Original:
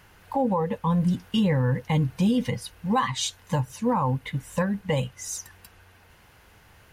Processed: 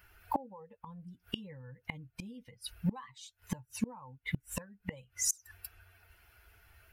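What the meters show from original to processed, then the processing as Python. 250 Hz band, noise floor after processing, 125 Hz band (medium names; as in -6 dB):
-16.0 dB, -78 dBFS, -17.5 dB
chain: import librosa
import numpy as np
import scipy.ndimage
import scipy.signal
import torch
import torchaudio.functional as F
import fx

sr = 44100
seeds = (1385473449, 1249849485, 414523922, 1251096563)

y = fx.bin_expand(x, sr, power=1.5)
y = fx.gate_flip(y, sr, shuts_db=-26.0, range_db=-30)
y = fx.low_shelf(y, sr, hz=380.0, db=-4.0)
y = F.gain(torch.from_numpy(y), 8.5).numpy()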